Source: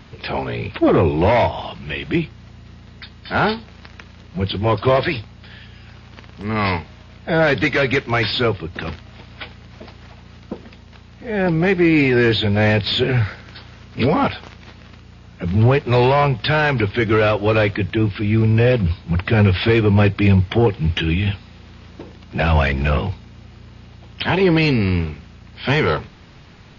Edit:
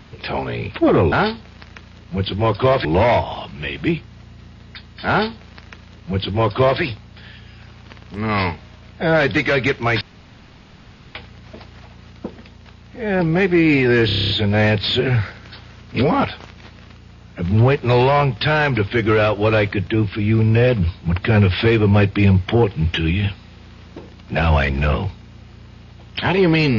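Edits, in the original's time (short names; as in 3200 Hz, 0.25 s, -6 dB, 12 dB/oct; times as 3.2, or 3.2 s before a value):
3.35–5.08 copy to 1.12
8.28–9.42 room tone
12.33 stutter 0.03 s, 9 plays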